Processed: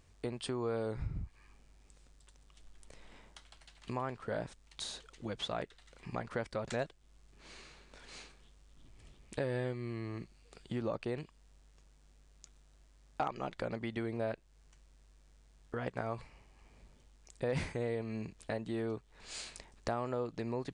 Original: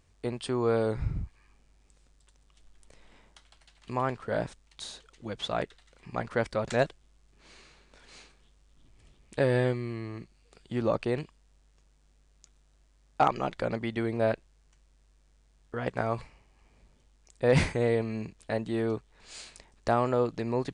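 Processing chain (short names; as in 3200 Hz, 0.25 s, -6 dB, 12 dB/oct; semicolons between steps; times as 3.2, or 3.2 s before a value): compressor 2.5:1, threshold -39 dBFS, peak gain reduction 14 dB; gain +1 dB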